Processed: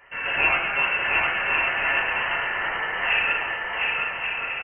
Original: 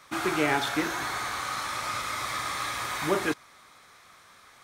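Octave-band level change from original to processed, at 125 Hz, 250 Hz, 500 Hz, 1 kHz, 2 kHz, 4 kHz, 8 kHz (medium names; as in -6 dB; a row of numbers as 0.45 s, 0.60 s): -3.5 dB, -10.5 dB, -1.0 dB, +3.0 dB, +11.5 dB, +5.0 dB, under -40 dB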